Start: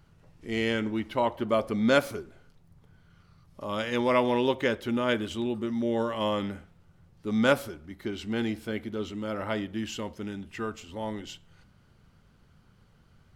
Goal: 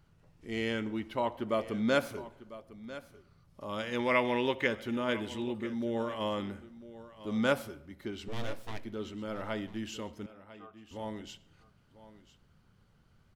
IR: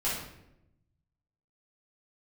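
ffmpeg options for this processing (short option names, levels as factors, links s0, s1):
-filter_complex "[0:a]asettb=1/sr,asplit=3[s0][s1][s2];[s0]atrim=end=3.994[s3];[s1]atrim=start=3.99:end=4.67,asetpts=PTS-STARTPTS,afade=t=in:d=0.004:c=qsin,afade=t=out:st=0.676:d=0.004:c=qsin,equalizer=f=2100:w=1.7:g=9[s4];[s2]atrim=start=4.666[s5];[s3][s4]acrossfade=d=0.004:c1=hsin:c2=qsin[s6];[s6][s5]acrossfade=d=0.004:c1=qsin:c2=hsin,asettb=1/sr,asplit=3[s7][s8][s9];[s7]atrim=end=8.284[s10];[s8]atrim=start=8.28:end=8.85,asetpts=PTS-STARTPTS,afade=t=in:d=0.004:c=qsin,afade=t=out:st=0.566:d=0.004:c=qsin,aeval=exprs='abs(val(0))':c=same[s11];[s9]atrim=start=8.846[s12];[s10][s11]acrossfade=d=0.004:c1=hsin:c2=qsin[s13];[s13][s12]acrossfade=d=0.004:c1=qsin:c2=hsin,asettb=1/sr,asplit=3[s14][s15][s16];[s14]atrim=end=10.264[s17];[s15]atrim=start=10.26:end=10.91,asetpts=PTS-STARTPTS,afade=t=in:d=0.004:c=qsin,afade=t=out:st=0.646:d=0.004:c=qsin,asplit=3[s18][s19][s20];[s18]bandpass=f=730:t=q:w=8,volume=1[s21];[s19]bandpass=f=1090:t=q:w=8,volume=0.501[s22];[s20]bandpass=f=2440:t=q:w=8,volume=0.355[s23];[s21][s22][s23]amix=inputs=3:normalize=0[s24];[s16]atrim=start=10.906[s25];[s17][s24]acrossfade=d=0.004:c1=hsin:c2=qsin[s26];[s26][s25]acrossfade=d=0.004:c1=qsin:c2=hsin,aecho=1:1:998:0.158,asplit=2[s27][s28];[1:a]atrim=start_sample=2205,adelay=60[s29];[s28][s29]afir=irnorm=-1:irlink=0,volume=0.0355[s30];[s27][s30]amix=inputs=2:normalize=0,volume=0.531"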